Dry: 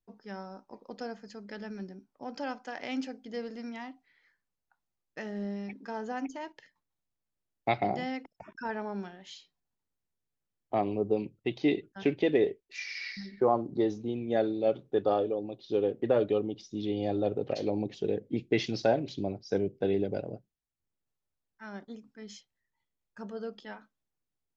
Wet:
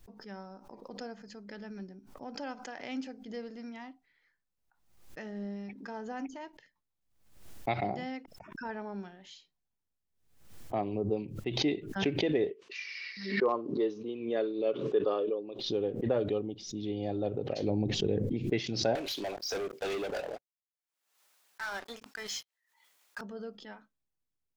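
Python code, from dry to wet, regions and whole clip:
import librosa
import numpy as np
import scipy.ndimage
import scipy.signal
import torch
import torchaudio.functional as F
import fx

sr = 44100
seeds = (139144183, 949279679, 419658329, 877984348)

y = fx.chain(x, sr, fx.clip_hard(threshold_db=-14.5),
    fx.cabinet(low_hz=290.0, low_slope=12, high_hz=6100.0, hz=(430.0, 770.0, 1100.0, 2800.0), db=(6, -9, 8, 6)), at=(12.5, 15.59))
y = fx.chain(y, sr, fx.low_shelf(hz=200.0, db=9.0),
    fx.sustainer(db_per_s=24.0), at=(17.63, 18.33))
y = fx.chain(y, sr, fx.highpass(hz=850.0, slope=12),
    fx.leveller(passes=5), at=(18.95, 23.21))
y = fx.low_shelf(y, sr, hz=110.0, db=6.0)
y = fx.pre_swell(y, sr, db_per_s=78.0)
y = F.gain(torch.from_numpy(y), -4.5).numpy()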